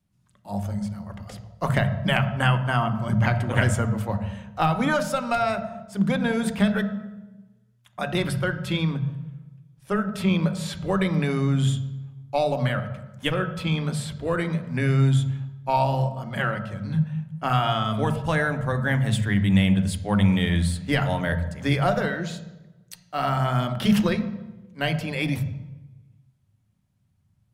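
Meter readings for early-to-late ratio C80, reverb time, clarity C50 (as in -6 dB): 12.5 dB, 1.0 s, 10.5 dB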